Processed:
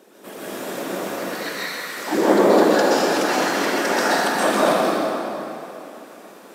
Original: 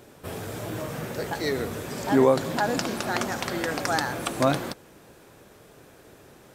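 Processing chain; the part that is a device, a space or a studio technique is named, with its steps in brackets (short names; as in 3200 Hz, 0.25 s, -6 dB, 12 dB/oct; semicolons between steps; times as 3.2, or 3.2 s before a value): 1.16–1.97 elliptic high-pass 1000 Hz; whispering ghost (whisperiser; HPF 220 Hz 24 dB/oct; reverb RT60 3.1 s, pre-delay 0.117 s, DRR -8.5 dB); gain -1 dB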